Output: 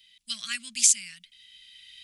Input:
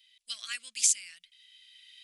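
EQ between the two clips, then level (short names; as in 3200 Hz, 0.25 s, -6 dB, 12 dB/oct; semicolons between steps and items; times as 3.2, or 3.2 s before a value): resonant low shelf 310 Hz +13 dB, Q 3; +5.0 dB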